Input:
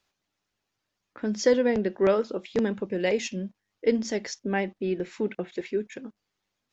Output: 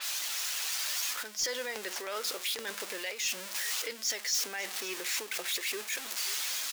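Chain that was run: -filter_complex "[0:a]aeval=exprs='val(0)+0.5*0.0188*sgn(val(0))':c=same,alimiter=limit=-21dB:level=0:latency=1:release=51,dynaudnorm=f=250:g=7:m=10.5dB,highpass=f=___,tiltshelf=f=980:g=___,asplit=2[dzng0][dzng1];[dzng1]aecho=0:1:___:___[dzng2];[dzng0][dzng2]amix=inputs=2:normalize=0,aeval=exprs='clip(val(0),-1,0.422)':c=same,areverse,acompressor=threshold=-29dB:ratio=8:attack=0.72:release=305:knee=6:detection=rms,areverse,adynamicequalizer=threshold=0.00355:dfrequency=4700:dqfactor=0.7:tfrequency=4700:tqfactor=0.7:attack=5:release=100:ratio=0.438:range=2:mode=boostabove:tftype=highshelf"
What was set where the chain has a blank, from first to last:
490, -10, 540, 0.0891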